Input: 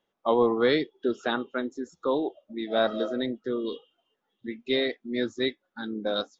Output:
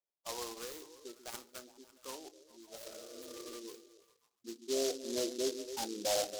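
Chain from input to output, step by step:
band-pass filter sweep 5,700 Hz → 740 Hz, 0:03.13–0:04.99
healed spectral selection 0:02.78–0:03.51, 320–2,900 Hz both
low-pass that shuts in the quiet parts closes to 840 Hz, open at −37 dBFS
echo through a band-pass that steps 137 ms, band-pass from 270 Hz, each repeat 0.7 octaves, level −11 dB
soft clipping −37.5 dBFS, distortion −8 dB
on a send at −14 dB: convolution reverb RT60 0.45 s, pre-delay 3 ms
on the sum: gate on every frequency bin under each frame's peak −20 dB strong
high shelf with overshoot 1,800 Hz −12.5 dB, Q 1.5
short delay modulated by noise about 5,000 Hz, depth 0.16 ms
level +7.5 dB

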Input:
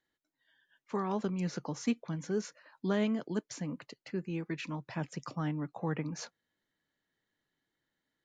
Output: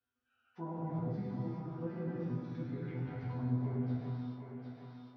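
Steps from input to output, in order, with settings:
treble cut that deepens with the level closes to 2,200 Hz, closed at −33 dBFS
high-pass filter 40 Hz 24 dB per octave
RIAA equalisation playback
harmonic and percussive parts rebalanced percussive −3 dB
parametric band 200 Hz −5.5 dB 0.33 octaves
brickwall limiter −23 dBFS, peak gain reduction 5.5 dB
speed change −17%
resonators tuned to a chord E2 minor, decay 0.58 s
phase-vocoder stretch with locked phases 0.52×
feedback echo with a high-pass in the loop 758 ms, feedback 36%, high-pass 180 Hz, level −8 dB
reverb whose tail is shaped and stops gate 450 ms flat, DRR −6 dB
one half of a high-frequency compander encoder only
level +5 dB

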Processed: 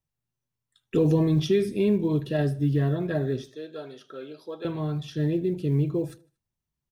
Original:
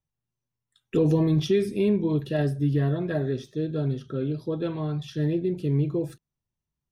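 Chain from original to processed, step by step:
0:03.49–0:04.65: high-pass filter 620 Hz 12 dB per octave
floating-point word with a short mantissa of 6 bits
repeating echo 77 ms, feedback 51%, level −24 dB

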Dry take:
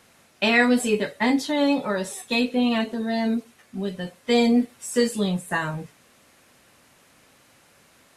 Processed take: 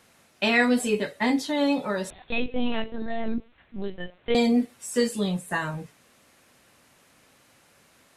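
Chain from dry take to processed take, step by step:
0:02.10–0:04.35: linear-prediction vocoder at 8 kHz pitch kept
level −2.5 dB

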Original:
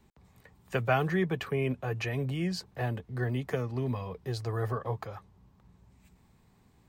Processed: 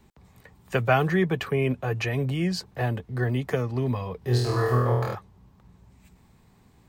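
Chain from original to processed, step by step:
0:04.19–0:05.15: flutter between parallel walls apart 4.2 metres, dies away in 0.91 s
level +5.5 dB

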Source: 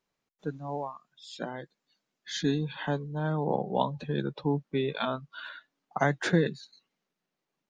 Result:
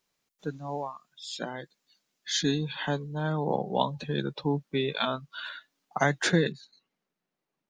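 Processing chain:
high-shelf EQ 2,700 Hz +10 dB, from 0:06.52 −4.5 dB

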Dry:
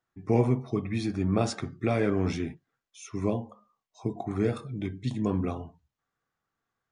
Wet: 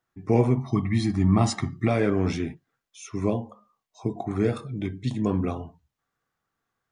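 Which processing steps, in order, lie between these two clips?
0:00.57–0:01.88: comb filter 1 ms, depth 90%
level +3 dB

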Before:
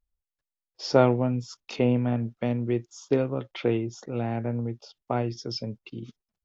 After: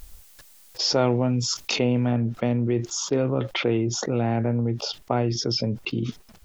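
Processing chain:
high-shelf EQ 3,800 Hz +8.5 dB, from 0:02.12 −2 dB
envelope flattener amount 70%
level −4 dB

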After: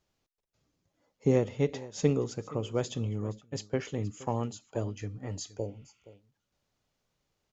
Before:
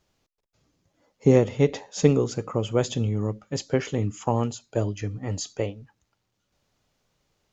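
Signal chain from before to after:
single-tap delay 471 ms −18.5 dB
0:02.10–0:03.77: downward expander −31 dBFS
0:05.60–0:06.10: healed spectral selection 1,000–4,400 Hz after
level −7.5 dB

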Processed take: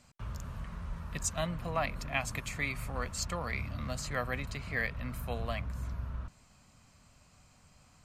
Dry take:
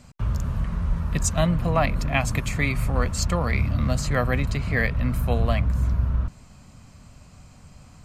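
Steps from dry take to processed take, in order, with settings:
low-shelf EQ 500 Hz −8.5 dB
level −7.5 dB

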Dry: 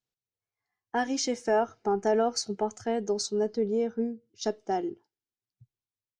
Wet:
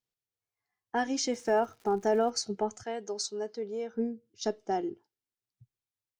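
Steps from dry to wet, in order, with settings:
0:01.32–0:02.29: surface crackle 250 per second −44 dBFS
0:02.83–0:03.94: high-pass filter 760 Hz 6 dB per octave
level −1.5 dB

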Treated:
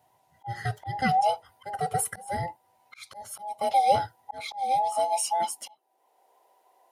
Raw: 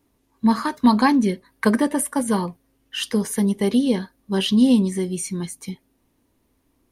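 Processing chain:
frequency inversion band by band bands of 1,000 Hz
high-pass filter sweep 100 Hz → 420 Hz, 0:04.25–0:06.08
volume swells 630 ms

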